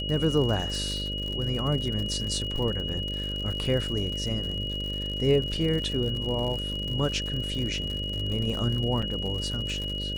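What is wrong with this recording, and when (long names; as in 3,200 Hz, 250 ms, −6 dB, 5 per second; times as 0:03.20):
mains buzz 50 Hz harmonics 12 −34 dBFS
surface crackle 91 per second −32 dBFS
whistle 2,900 Hz −32 dBFS
0:09.02–0:09.03: drop-out 5 ms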